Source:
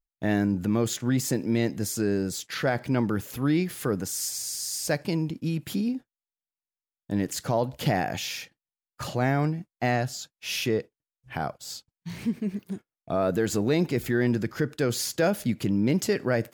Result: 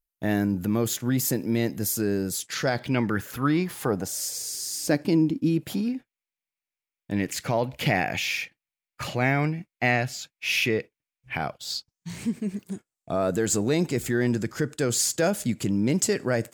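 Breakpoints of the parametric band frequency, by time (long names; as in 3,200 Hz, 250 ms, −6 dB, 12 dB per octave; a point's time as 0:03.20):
parametric band +12 dB 0.62 octaves
0:02.30 13,000 Hz
0:03.08 1,900 Hz
0:04.83 290 Hz
0:05.54 290 Hz
0:05.96 2,300 Hz
0:11.40 2,300 Hz
0:12.09 7,800 Hz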